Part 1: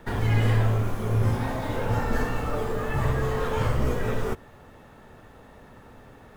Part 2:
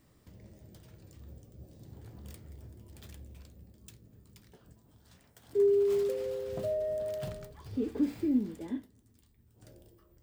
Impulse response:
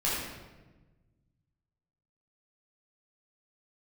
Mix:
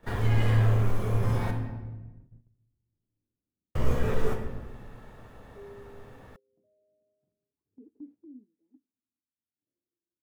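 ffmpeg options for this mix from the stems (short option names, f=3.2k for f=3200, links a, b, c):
-filter_complex "[0:a]asoftclip=type=tanh:threshold=-13.5dB,volume=-5.5dB,asplit=3[a][b][c];[a]atrim=end=1.51,asetpts=PTS-STARTPTS,afade=t=out:st=1.506:d=0.004:c=hsin[d];[b]atrim=start=1.51:end=3.75,asetpts=PTS-STARTPTS,volume=0[e];[c]atrim=start=3.75,asetpts=PTS-STARTPTS,afade=t=in:d=0.004:c=hsin[f];[d][e][f]concat=n=3:v=0:a=1,asplit=2[g][h];[h]volume=-10.5dB[i];[1:a]bandpass=f=290:t=q:w=2.7:csg=0,tremolo=f=0.88:d=0.42,volume=-16dB[j];[2:a]atrim=start_sample=2205[k];[i][k]afir=irnorm=-1:irlink=0[l];[g][j][l]amix=inputs=3:normalize=0,agate=range=-11dB:threshold=-52dB:ratio=16:detection=peak"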